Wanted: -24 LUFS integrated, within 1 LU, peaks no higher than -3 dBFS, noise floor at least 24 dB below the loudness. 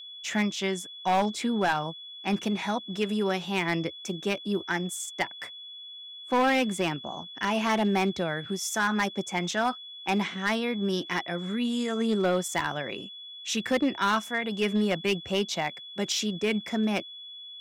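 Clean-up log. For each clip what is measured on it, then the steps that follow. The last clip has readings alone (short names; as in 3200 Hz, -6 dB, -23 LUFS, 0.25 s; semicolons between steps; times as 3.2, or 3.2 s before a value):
clipped 1.0%; flat tops at -19.0 dBFS; steady tone 3400 Hz; tone level -41 dBFS; loudness -28.5 LUFS; peak -19.0 dBFS; loudness target -24.0 LUFS
-> clip repair -19 dBFS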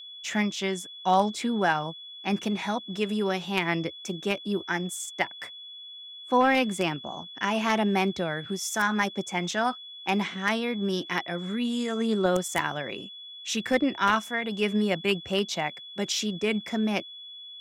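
clipped 0.0%; steady tone 3400 Hz; tone level -41 dBFS
-> notch 3400 Hz, Q 30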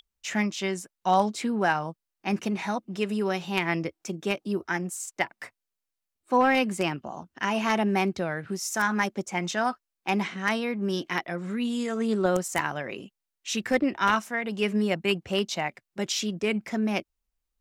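steady tone none; loudness -28.0 LUFS; peak -9.5 dBFS; loudness target -24.0 LUFS
-> gain +4 dB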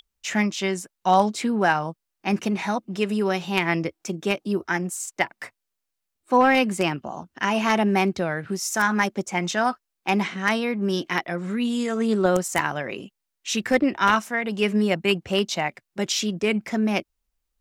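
loudness -24.0 LUFS; peak -5.5 dBFS; noise floor -81 dBFS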